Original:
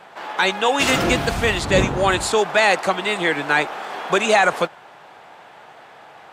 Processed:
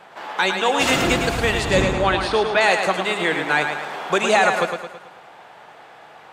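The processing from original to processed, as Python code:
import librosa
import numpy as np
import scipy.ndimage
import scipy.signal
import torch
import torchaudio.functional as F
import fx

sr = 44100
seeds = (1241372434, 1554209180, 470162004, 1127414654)

y = fx.savgol(x, sr, points=15, at=(1.82, 2.61))
y = fx.echo_feedback(y, sr, ms=109, feedback_pct=48, wet_db=-6.5)
y = F.gain(torch.from_numpy(y), -1.5).numpy()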